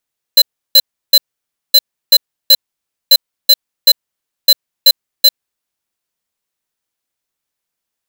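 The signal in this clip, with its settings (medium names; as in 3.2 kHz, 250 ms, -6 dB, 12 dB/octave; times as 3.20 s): beep pattern square 4.06 kHz, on 0.05 s, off 0.33 s, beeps 3, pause 0.56 s, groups 4, -5 dBFS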